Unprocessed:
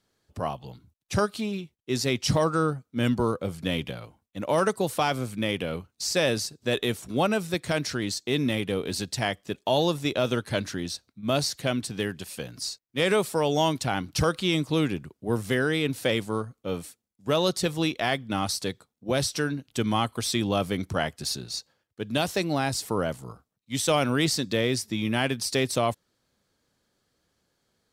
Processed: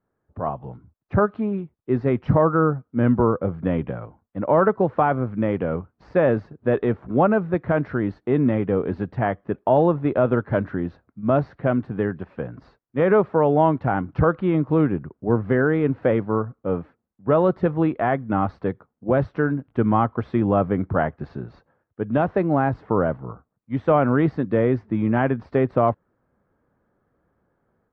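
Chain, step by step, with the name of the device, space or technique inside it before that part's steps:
action camera in a waterproof case (low-pass filter 1,500 Hz 24 dB per octave; automatic gain control gain up to 8 dB; level −1 dB; AAC 64 kbit/s 44,100 Hz)

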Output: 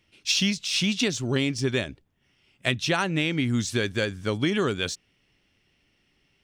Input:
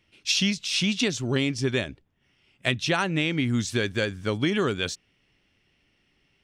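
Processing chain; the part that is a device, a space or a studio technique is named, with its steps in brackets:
exciter from parts (in parallel at −9 dB: high-pass filter 3,200 Hz 12 dB per octave + soft clipping −33.5 dBFS, distortion −6 dB)

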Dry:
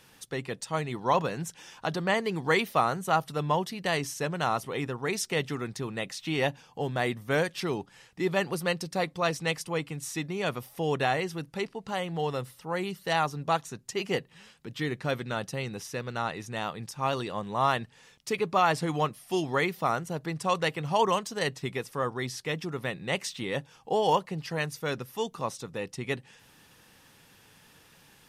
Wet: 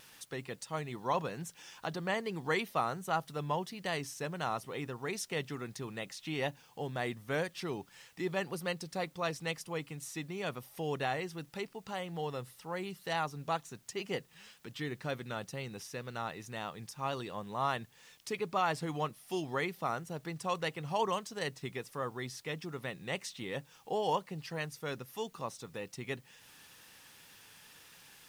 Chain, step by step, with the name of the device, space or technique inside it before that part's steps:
noise-reduction cassette on a plain deck (one half of a high-frequency compander encoder only; tape wow and flutter 24 cents; white noise bed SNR 31 dB)
level −7.5 dB

